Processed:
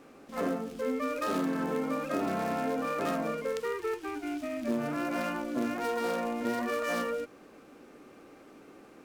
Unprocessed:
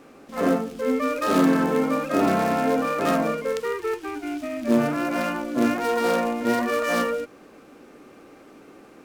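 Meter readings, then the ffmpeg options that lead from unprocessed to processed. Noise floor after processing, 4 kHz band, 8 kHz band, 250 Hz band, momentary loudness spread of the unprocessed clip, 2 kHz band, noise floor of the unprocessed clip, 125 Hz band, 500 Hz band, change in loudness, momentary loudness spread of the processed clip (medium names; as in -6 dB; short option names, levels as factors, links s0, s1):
-54 dBFS, -8.5 dB, -8.5 dB, -9.5 dB, 9 LU, -8.5 dB, -49 dBFS, -9.5 dB, -8.5 dB, -9.0 dB, 4 LU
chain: -af "acompressor=threshold=0.0708:ratio=4,volume=0.562"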